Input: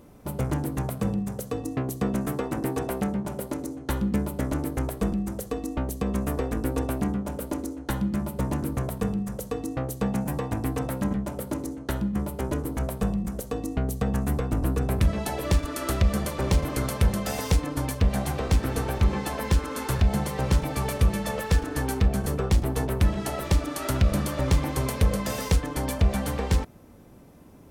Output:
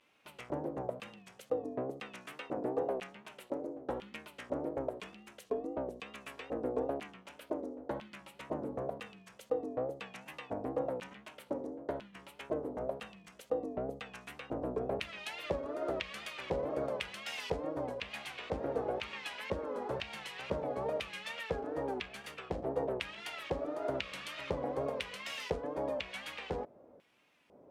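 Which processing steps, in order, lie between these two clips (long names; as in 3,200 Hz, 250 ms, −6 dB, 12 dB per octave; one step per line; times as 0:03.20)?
tape wow and flutter 110 cents
auto-filter band-pass square 1 Hz 560–2,700 Hz
level +1 dB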